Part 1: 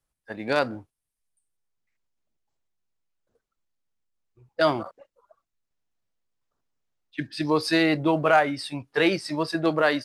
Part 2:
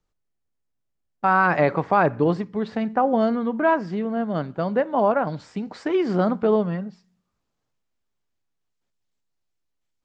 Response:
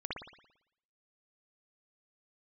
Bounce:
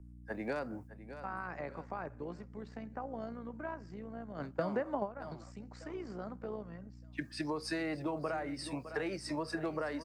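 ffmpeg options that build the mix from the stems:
-filter_complex "[0:a]lowpass=f=10k:w=0.5412,lowpass=f=10k:w=1.3066,acompressor=threshold=-26dB:ratio=5,aeval=exprs='val(0)+0.00447*(sin(2*PI*60*n/s)+sin(2*PI*2*60*n/s)/2+sin(2*PI*3*60*n/s)/3+sin(2*PI*4*60*n/s)/4+sin(2*PI*5*60*n/s)/5)':c=same,volume=-3dB,asplit=3[a][b][c];[b]volume=-15.5dB[d];[1:a]highshelf=f=2.4k:g=11.5,acompressor=threshold=-31dB:ratio=1.5,volume=2dB[e];[c]apad=whole_len=442862[f];[e][f]sidechaingate=range=-33dB:threshold=-48dB:ratio=16:detection=peak[g];[d]aecho=0:1:608|1216|1824|2432|3040|3648:1|0.4|0.16|0.064|0.0256|0.0102[h];[a][g][h]amix=inputs=3:normalize=0,equalizer=f=3.5k:w=1.7:g=-12,acrossover=split=170|400[i][j][k];[i]acompressor=threshold=-51dB:ratio=4[l];[j]acompressor=threshold=-41dB:ratio=4[m];[k]acompressor=threshold=-36dB:ratio=4[n];[l][m][n]amix=inputs=3:normalize=0"

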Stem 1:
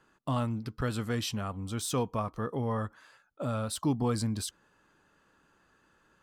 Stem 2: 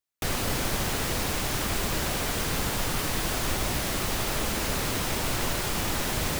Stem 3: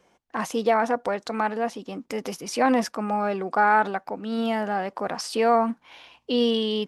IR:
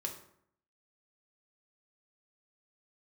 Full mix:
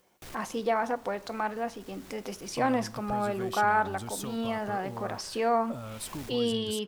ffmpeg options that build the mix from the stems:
-filter_complex "[0:a]acompressor=threshold=-37dB:ratio=6,highshelf=f=10k:g=10.5,adelay=2300,volume=-0.5dB[a];[1:a]acompressor=mode=upward:threshold=-47dB:ratio=2.5,asoftclip=type=tanh:threshold=-33dB,volume=-10dB,asplit=2[b][c];[c]volume=-20.5dB[d];[2:a]volume=-8.5dB,asplit=3[e][f][g];[f]volume=-7.5dB[h];[g]apad=whole_len=282110[i];[b][i]sidechaincompress=threshold=-50dB:ratio=4:attack=11:release=317[j];[3:a]atrim=start_sample=2205[k];[d][h]amix=inputs=2:normalize=0[l];[l][k]afir=irnorm=-1:irlink=0[m];[a][j][e][m]amix=inputs=4:normalize=0"

